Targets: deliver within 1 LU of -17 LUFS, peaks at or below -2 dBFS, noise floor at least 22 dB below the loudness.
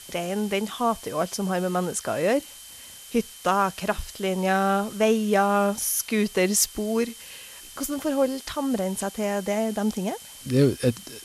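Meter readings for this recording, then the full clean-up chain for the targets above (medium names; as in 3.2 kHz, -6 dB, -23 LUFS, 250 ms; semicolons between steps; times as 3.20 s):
steady tone 3.1 kHz; tone level -49 dBFS; noise floor -44 dBFS; noise floor target -47 dBFS; loudness -25.0 LUFS; peak level -7.0 dBFS; loudness target -17.0 LUFS
-> band-stop 3.1 kHz, Q 30; noise print and reduce 6 dB; trim +8 dB; peak limiter -2 dBFS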